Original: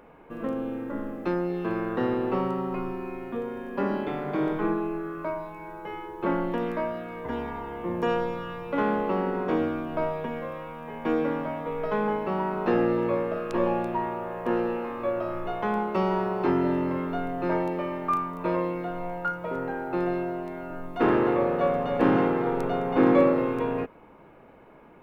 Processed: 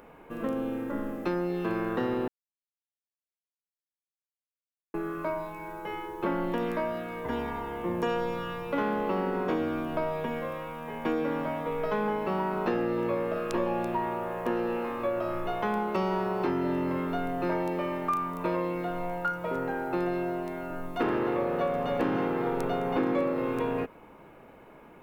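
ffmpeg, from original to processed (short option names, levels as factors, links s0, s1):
-filter_complex "[0:a]asplit=3[s0][s1][s2];[s0]atrim=end=2.28,asetpts=PTS-STARTPTS,afade=t=out:st=2.276:d=0.004:c=hsin[s3];[s1]atrim=start=2.28:end=4.94,asetpts=PTS-STARTPTS,volume=0[s4];[s2]atrim=start=4.94,asetpts=PTS-STARTPTS,afade=t=in:d=0.004:c=hsin[s5];[s3][s4][s5]concat=n=3:v=0:a=1,highshelf=f=4100:g=9,acompressor=threshold=0.0562:ratio=4"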